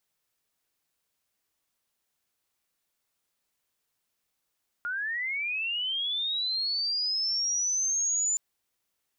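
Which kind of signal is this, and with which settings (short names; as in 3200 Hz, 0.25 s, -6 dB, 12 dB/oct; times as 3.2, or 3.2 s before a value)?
chirp linear 1400 Hz -> 7100 Hz -29 dBFS -> -24 dBFS 3.52 s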